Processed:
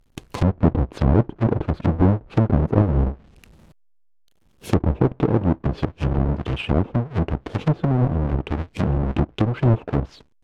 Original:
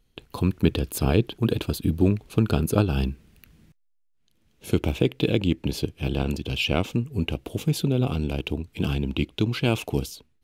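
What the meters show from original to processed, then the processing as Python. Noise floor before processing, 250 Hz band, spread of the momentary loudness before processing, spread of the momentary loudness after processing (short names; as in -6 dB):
-66 dBFS, +3.0 dB, 7 LU, 7 LU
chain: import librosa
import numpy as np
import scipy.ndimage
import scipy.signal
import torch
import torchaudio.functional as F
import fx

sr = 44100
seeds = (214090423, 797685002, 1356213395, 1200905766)

y = fx.halfwave_hold(x, sr)
y = fx.env_lowpass_down(y, sr, base_hz=840.0, full_db=-16.5)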